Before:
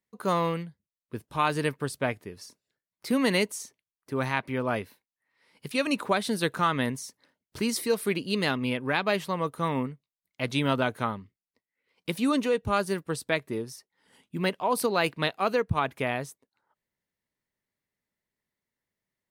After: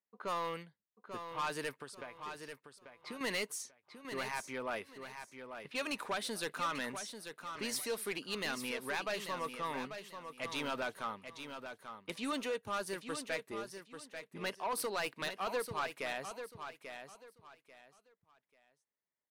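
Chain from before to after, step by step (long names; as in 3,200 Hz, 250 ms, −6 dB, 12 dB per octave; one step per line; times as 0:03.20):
high-pass filter 720 Hz 6 dB per octave
low-pass that shuts in the quiet parts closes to 1,400 Hz, open at −30 dBFS
0:01.74–0:03.21: downward compressor 16 to 1, threshold −39 dBFS, peak gain reduction 14.5 dB
soft clipping −26.5 dBFS, distortion −9 dB
repeating echo 840 ms, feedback 26%, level −8.5 dB
level −4 dB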